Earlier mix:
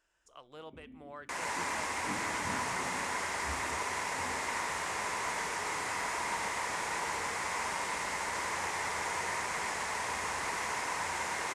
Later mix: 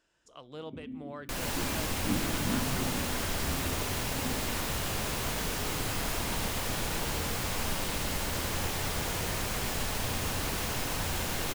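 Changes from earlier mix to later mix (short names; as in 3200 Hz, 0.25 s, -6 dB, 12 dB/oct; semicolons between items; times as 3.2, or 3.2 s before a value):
second sound: remove speaker cabinet 160–8800 Hz, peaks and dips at 440 Hz +3 dB, 970 Hz +9 dB, 2000 Hz +8 dB, 3000 Hz -4 dB; master: add ten-band EQ 125 Hz +11 dB, 250 Hz +9 dB, 500 Hz +4 dB, 4000 Hz +7 dB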